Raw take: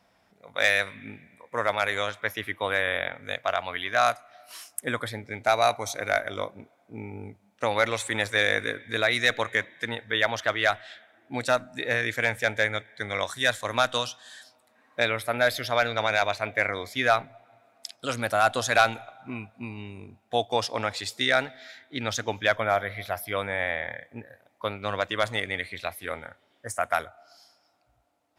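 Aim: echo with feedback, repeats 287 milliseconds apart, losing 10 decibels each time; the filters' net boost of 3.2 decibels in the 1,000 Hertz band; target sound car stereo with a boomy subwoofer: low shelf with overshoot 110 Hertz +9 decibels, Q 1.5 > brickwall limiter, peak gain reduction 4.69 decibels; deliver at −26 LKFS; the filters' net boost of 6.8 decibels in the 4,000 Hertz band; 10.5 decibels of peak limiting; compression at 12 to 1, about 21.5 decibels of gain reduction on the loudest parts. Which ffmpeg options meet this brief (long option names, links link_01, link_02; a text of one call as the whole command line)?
ffmpeg -i in.wav -af "equalizer=frequency=1000:width_type=o:gain=4.5,equalizer=frequency=4000:width_type=o:gain=7.5,acompressor=threshold=-35dB:ratio=12,alimiter=level_in=3.5dB:limit=-24dB:level=0:latency=1,volume=-3.5dB,lowshelf=frequency=110:width_type=q:width=1.5:gain=9,aecho=1:1:287|574|861|1148:0.316|0.101|0.0324|0.0104,volume=17dB,alimiter=limit=-13dB:level=0:latency=1" out.wav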